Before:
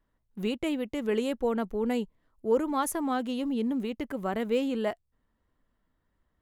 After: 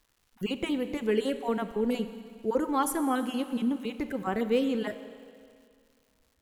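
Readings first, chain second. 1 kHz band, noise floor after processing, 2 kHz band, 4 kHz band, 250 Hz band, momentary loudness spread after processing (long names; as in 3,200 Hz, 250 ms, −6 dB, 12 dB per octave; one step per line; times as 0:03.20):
+1.0 dB, −71 dBFS, +1.0 dB, +1.0 dB, +0.5 dB, 9 LU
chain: time-frequency cells dropped at random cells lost 24%
notch filter 610 Hz, Q 12
four-comb reverb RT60 2.2 s, combs from 30 ms, DRR 10.5 dB
surface crackle 310 per second −56 dBFS
level +1.5 dB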